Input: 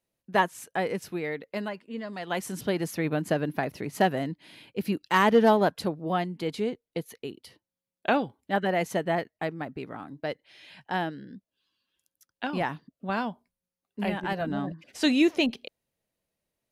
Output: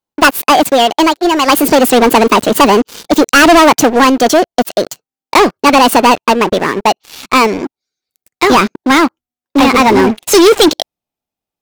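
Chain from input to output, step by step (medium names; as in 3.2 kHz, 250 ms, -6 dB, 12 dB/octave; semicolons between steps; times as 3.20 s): gliding tape speed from 157% -> 131%; waveshaping leveller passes 5; trim +8 dB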